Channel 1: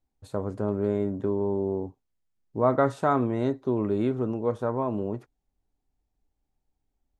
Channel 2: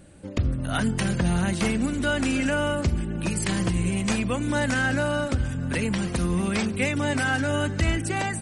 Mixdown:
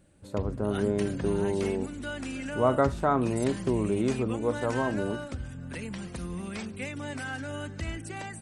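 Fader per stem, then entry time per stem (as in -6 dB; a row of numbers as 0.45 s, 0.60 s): -1.5 dB, -11.5 dB; 0.00 s, 0.00 s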